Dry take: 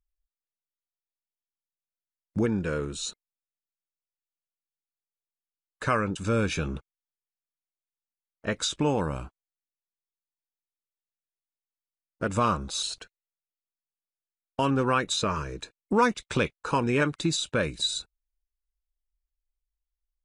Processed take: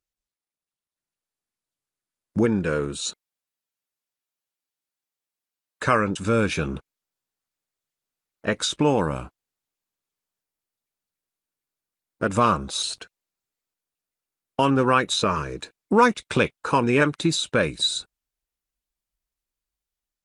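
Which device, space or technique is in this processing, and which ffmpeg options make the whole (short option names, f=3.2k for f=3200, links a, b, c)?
video call: -af "highpass=f=120:p=1,dynaudnorm=f=690:g=3:m=6dB" -ar 48000 -c:a libopus -b:a 32k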